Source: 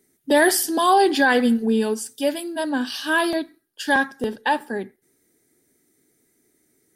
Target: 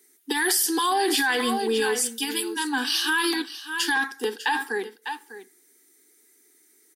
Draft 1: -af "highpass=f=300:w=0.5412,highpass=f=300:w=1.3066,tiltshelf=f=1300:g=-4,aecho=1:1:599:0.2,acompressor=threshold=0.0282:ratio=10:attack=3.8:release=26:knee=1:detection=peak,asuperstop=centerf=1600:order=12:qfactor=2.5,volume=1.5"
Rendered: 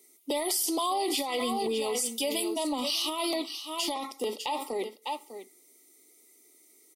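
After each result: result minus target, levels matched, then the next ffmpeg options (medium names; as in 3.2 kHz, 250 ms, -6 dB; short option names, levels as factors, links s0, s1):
2 kHz band -11.0 dB; compression: peak gain reduction +6.5 dB
-af "highpass=f=300:w=0.5412,highpass=f=300:w=1.3066,tiltshelf=f=1300:g=-4,aecho=1:1:599:0.2,acompressor=threshold=0.0282:ratio=10:attack=3.8:release=26:knee=1:detection=peak,asuperstop=centerf=600:order=12:qfactor=2.5,volume=1.5"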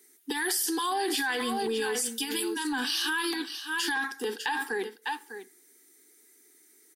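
compression: peak gain reduction +6.5 dB
-af "highpass=f=300:w=0.5412,highpass=f=300:w=1.3066,tiltshelf=f=1300:g=-4,aecho=1:1:599:0.2,acompressor=threshold=0.0631:ratio=10:attack=3.8:release=26:knee=1:detection=peak,asuperstop=centerf=600:order=12:qfactor=2.5,volume=1.5"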